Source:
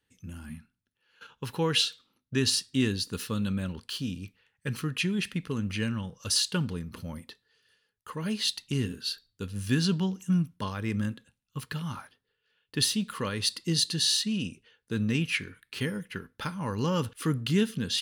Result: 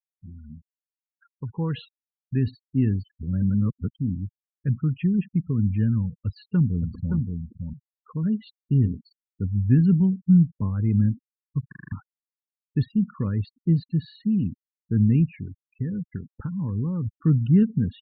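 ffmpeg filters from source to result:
-filter_complex "[0:a]asplit=2[a][b];[b]afade=t=in:st=6.16:d=0.01,afade=t=out:st=7.16:d=0.01,aecho=0:1:570|1140:0.562341|0.0562341[c];[a][c]amix=inputs=2:normalize=0,asettb=1/sr,asplit=3[d][e][f];[d]atrim=end=15.274[g];[e]atrim=start=15.27:end=17.11,asetpts=PTS-STARTPTS,afade=t=in:d=0.004:c=qsin,afade=t=out:st=1.836:d=0.004:c=qsin,acompressor=threshold=-33dB:ratio=2.5:attack=3.2:release=140:knee=1:detection=peak[h];[f]atrim=start=17.106[i];[g][h]acrossfade=d=0.004:c1=hsin:c2=qsin[j];[j][i]acrossfade=d=0.004:c1=qsin:c2=hsin,asplit=9[k][l][m][n][o][p][q][r][s];[k]atrim=end=3.052[t];[l]atrim=start=3.048:end=3.952,asetpts=PTS-STARTPTS,areverse[u];[m]atrim=start=3.948:end=11.722[v];[n]atrim=start=11.678:end=11.722[w];[o]atrim=start=11.678:end=11.722[x];[p]atrim=start=11.678:end=11.722[y];[q]atrim=start=11.678:end=11.722[z];[r]atrim=start=11.678:end=11.722[aa];[s]atrim=start=11.918[ab];[t][u]acrossfade=d=0.004:c1=hsin:c2=hsin[ac];[ac][v]acrossfade=d=0.004:c1=hsin:c2=hsin[ad];[ad][w]acrossfade=d=0.004:c1=hsin:c2=hsin[ae];[ae][x]acrossfade=d=0.004:c1=hsin:c2=hsin[af];[af][y]acrossfade=d=0.004:c1=hsin:c2=hsin[ag];[ag][z]acrossfade=d=0.004:c1=hsin:c2=hsin[ah];[ah][aa]acrossfade=d=0.004:c1=hsin:c2=hsin[ai];[ai][ab]acrossfade=d=0.004:c1=hsin:c2=hsin,lowpass=1.6k,afftfilt=real='re*gte(hypot(re,im),0.02)':imag='im*gte(hypot(re,im),0.02)':win_size=1024:overlap=0.75,asubboost=boost=8:cutoff=220,volume=-4dB"

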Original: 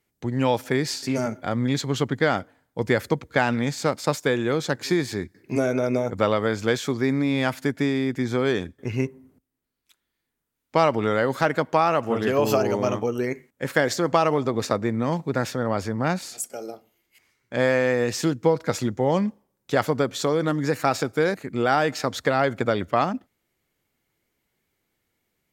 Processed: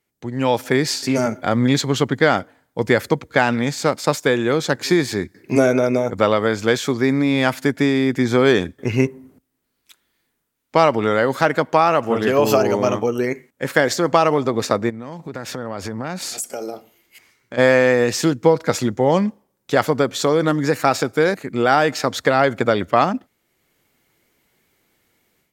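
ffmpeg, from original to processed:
-filter_complex "[0:a]asplit=3[a][b][c];[a]afade=t=out:st=14.89:d=0.02[d];[b]acompressor=threshold=-35dB:ratio=4:attack=3.2:release=140:knee=1:detection=peak,afade=t=in:st=14.89:d=0.02,afade=t=out:st=17.57:d=0.02[e];[c]afade=t=in:st=17.57:d=0.02[f];[d][e][f]amix=inputs=3:normalize=0,lowshelf=f=110:g=-6.5,dynaudnorm=f=330:g=3:m=11.5dB"

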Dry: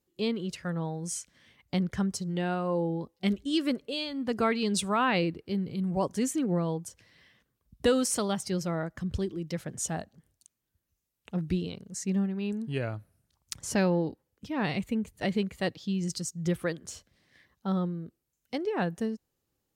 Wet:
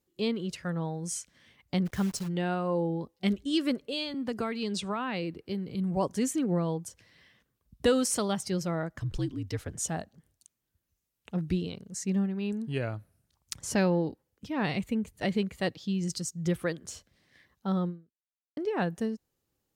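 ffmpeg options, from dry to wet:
-filter_complex "[0:a]asplit=3[a][b][c];[a]afade=t=out:st=1.85:d=0.02[d];[b]acrusher=bits=8:dc=4:mix=0:aa=0.000001,afade=t=in:st=1.85:d=0.02,afade=t=out:st=2.27:d=0.02[e];[c]afade=t=in:st=2.27:d=0.02[f];[d][e][f]amix=inputs=3:normalize=0,asettb=1/sr,asplit=3[g][h][i];[g]atrim=end=4.144[j];[h]atrim=start=4.14:end=5.75,asetpts=PTS-STARTPTS,afade=t=in:d=0.004:c=qsin,afade=t=out:st=1.606:d=0.004:c=qsin,acrossover=split=230|6700[k][l][m];[k]acompressor=threshold=-39dB:ratio=4[n];[l]acompressor=threshold=-31dB:ratio=4[o];[m]acompressor=threshold=-57dB:ratio=4[p];[n][o][p]amix=inputs=3:normalize=0[q];[i]atrim=start=5.746[r];[j][q]acrossfade=d=0.004:c1=hsin:c2=qsin[s];[s][r]acrossfade=d=0.004:c1=qsin:c2=hsin,asettb=1/sr,asplit=3[t][u][v];[t]atrim=end=9.004[w];[u]atrim=start=9:end=9.75,asetpts=PTS-STARTPTS,afade=t=in:d=0.004:c=qsin,afade=t=out:st=0.746:d=0.004:c=qsin,afreqshift=-59[x];[v]atrim=start=9.746[y];[w][x]acrossfade=d=0.004:c1=hsin:c2=qsin[z];[z][y]acrossfade=d=0.004:c1=qsin:c2=hsin,asplit=2[aa][ab];[aa]atrim=end=18.57,asetpts=PTS-STARTPTS,afade=t=out:st=17.89:d=0.68:c=exp[ac];[ab]atrim=start=18.57,asetpts=PTS-STARTPTS,afade=t=in:d=0.004:c=hsin[ad];[ac][ad]concat=n=2:v=0:a=1"

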